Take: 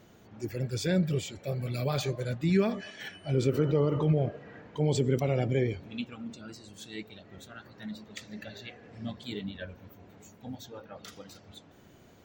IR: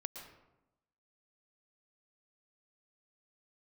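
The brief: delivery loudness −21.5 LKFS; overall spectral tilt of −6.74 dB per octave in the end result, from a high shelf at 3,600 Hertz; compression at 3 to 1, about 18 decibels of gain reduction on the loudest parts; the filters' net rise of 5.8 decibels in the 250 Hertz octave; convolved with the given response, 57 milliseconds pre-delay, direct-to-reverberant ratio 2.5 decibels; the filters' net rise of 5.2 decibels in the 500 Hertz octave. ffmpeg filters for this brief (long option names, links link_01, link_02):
-filter_complex "[0:a]equalizer=frequency=250:width_type=o:gain=7.5,equalizer=frequency=500:width_type=o:gain=4,highshelf=frequency=3600:gain=-6.5,acompressor=threshold=-42dB:ratio=3,asplit=2[link_01][link_02];[1:a]atrim=start_sample=2205,adelay=57[link_03];[link_02][link_03]afir=irnorm=-1:irlink=0,volume=-0.5dB[link_04];[link_01][link_04]amix=inputs=2:normalize=0,volume=19.5dB"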